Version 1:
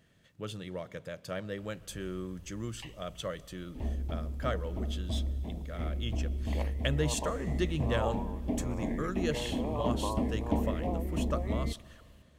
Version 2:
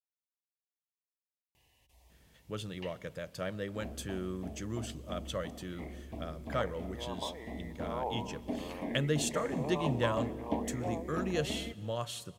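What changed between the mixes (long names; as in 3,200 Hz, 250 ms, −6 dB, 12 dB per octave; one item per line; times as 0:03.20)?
speech: entry +2.10 s
background: add high-pass filter 330 Hz 6 dB per octave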